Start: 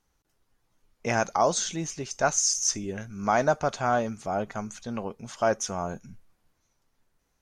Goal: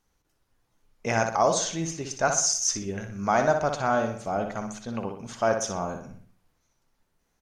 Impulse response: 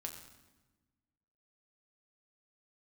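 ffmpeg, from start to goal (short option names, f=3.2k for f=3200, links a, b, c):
-filter_complex "[0:a]asplit=2[a][b];[b]adelay=61,lowpass=f=4.7k:p=1,volume=-6dB,asplit=2[c][d];[d]adelay=61,lowpass=f=4.7k:p=1,volume=0.46,asplit=2[e][f];[f]adelay=61,lowpass=f=4.7k:p=1,volume=0.46,asplit=2[g][h];[h]adelay=61,lowpass=f=4.7k:p=1,volume=0.46,asplit=2[i][j];[j]adelay=61,lowpass=f=4.7k:p=1,volume=0.46,asplit=2[k][l];[l]adelay=61,lowpass=f=4.7k:p=1,volume=0.46[m];[a][c][e][g][i][k][m]amix=inputs=7:normalize=0"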